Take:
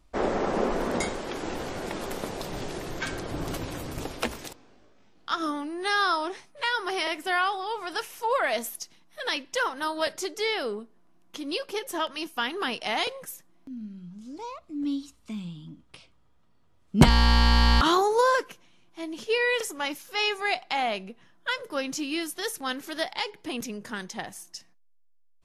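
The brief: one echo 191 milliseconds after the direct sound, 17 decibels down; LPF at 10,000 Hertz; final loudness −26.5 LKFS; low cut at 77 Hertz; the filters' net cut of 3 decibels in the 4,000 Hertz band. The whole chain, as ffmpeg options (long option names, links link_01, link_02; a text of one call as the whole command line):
ffmpeg -i in.wav -af "highpass=77,lowpass=10000,equalizer=frequency=4000:width_type=o:gain=-4,aecho=1:1:191:0.141,volume=2.5dB" out.wav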